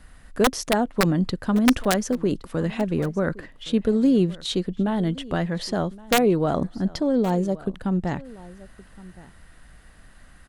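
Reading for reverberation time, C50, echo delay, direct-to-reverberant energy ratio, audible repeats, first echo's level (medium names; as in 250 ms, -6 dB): no reverb, no reverb, 1118 ms, no reverb, 1, -20.5 dB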